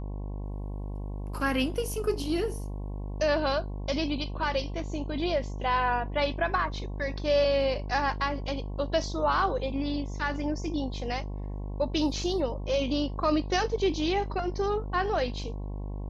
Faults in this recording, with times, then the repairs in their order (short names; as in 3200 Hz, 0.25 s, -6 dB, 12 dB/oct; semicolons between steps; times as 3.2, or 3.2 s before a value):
buzz 50 Hz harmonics 22 -35 dBFS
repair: de-hum 50 Hz, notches 22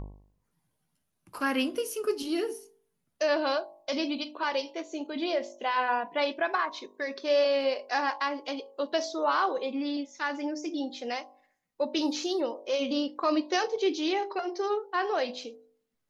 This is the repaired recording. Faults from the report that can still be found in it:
none